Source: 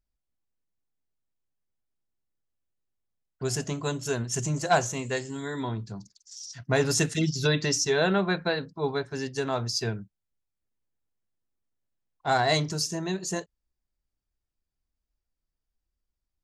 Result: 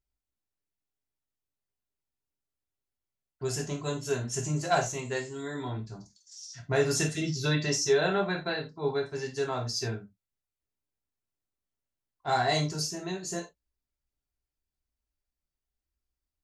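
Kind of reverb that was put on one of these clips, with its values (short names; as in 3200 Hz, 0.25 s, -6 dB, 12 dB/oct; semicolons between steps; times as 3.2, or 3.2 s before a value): non-linear reverb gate 0.11 s falling, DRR 0 dB; gain -6 dB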